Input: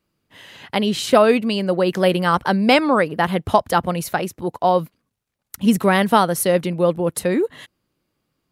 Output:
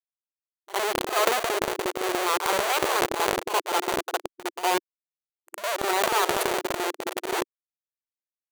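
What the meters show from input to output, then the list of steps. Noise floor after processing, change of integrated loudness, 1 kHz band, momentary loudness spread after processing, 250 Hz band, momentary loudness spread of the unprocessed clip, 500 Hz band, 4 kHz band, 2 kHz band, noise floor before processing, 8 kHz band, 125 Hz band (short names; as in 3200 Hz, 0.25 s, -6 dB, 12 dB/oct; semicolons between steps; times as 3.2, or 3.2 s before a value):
under -85 dBFS, -7.5 dB, -5.5 dB, 9 LU, -15.5 dB, 8 LU, -9.5 dB, -3.0 dB, -4.0 dB, -76 dBFS, -1.0 dB, -21.5 dB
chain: fixed phaser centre 2000 Hz, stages 6; split-band echo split 910 Hz, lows 0.353 s, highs 0.167 s, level -11 dB; dynamic EQ 2000 Hz, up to -4 dB, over -38 dBFS, Q 2.9; Schmitt trigger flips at -19.5 dBFS; brick-wall FIR high-pass 340 Hz; on a send: reverse echo 59 ms -18.5 dB; on the sum: transient shaper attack -1 dB, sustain +12 dB; notch 5200 Hz, Q 12; gain +4 dB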